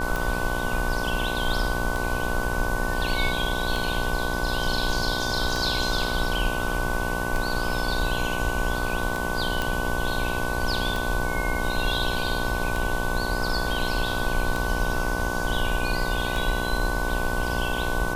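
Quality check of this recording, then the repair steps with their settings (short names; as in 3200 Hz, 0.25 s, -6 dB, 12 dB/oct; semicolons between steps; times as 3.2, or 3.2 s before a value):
buzz 60 Hz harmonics 19 -30 dBFS
tick 33 1/3 rpm
tone 1500 Hz -30 dBFS
9.62 pop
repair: de-click; de-hum 60 Hz, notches 19; notch 1500 Hz, Q 30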